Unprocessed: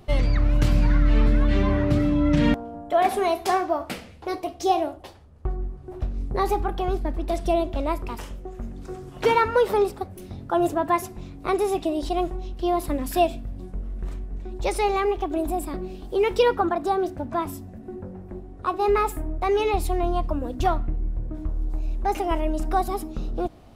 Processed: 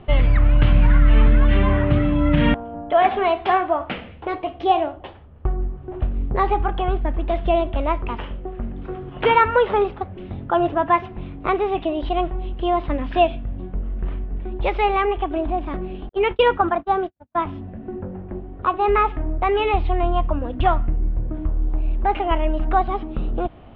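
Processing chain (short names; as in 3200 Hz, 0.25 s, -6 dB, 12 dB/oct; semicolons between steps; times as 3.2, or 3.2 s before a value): elliptic low-pass 3200 Hz, stop band 70 dB; dynamic EQ 330 Hz, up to -5 dB, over -34 dBFS, Q 0.73; 16.09–17.4 gate -28 dBFS, range -56 dB; gain +6.5 dB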